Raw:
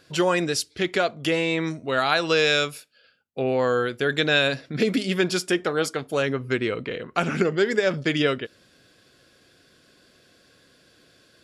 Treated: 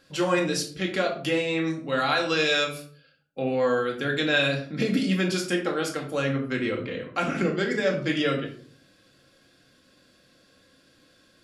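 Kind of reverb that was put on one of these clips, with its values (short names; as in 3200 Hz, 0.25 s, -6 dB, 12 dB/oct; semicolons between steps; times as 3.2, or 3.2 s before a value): shoebox room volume 480 m³, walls furnished, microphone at 2.2 m; gain -5.5 dB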